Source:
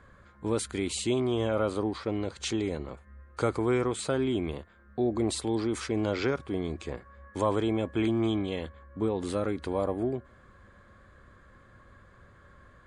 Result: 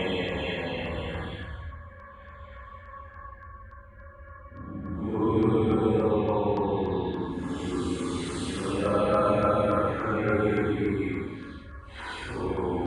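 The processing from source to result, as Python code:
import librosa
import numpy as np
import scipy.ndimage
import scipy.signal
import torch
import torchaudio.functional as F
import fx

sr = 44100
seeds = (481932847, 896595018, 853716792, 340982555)

y = fx.hpss(x, sr, part='harmonic', gain_db=7)
y = fx.paulstretch(y, sr, seeds[0], factor=11.0, window_s=0.05, from_s=8.54)
y = fx.band_shelf(y, sr, hz=1600.0, db=8.5, octaves=2.3)
y = fx.filter_lfo_notch(y, sr, shape='saw_down', hz=3.5, low_hz=880.0, high_hz=4400.0, q=2.3)
y = y * librosa.db_to_amplitude(-2.5)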